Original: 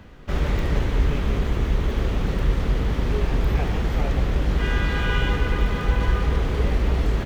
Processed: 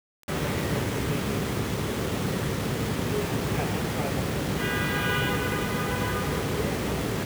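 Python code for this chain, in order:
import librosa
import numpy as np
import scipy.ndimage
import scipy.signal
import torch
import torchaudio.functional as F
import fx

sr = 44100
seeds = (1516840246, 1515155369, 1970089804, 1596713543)

y = scipy.signal.sosfilt(scipy.signal.butter(4, 100.0, 'highpass', fs=sr, output='sos'), x)
y = fx.quant_dither(y, sr, seeds[0], bits=6, dither='none')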